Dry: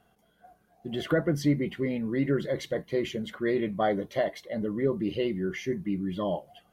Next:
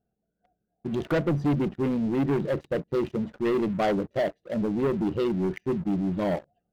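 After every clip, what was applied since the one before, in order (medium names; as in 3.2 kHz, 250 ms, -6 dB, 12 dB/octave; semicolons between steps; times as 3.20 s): local Wiener filter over 41 samples; waveshaping leveller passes 3; trim -4.5 dB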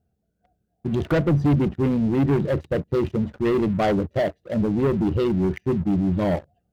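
peaking EQ 81 Hz +13 dB 1.2 oct; trim +3 dB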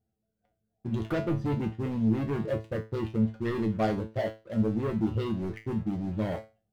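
feedback comb 110 Hz, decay 0.28 s, harmonics all, mix 90%; trim +1.5 dB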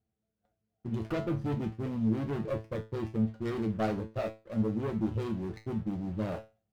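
sliding maximum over 9 samples; trim -3 dB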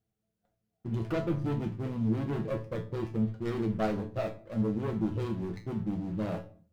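simulated room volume 430 m³, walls furnished, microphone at 0.66 m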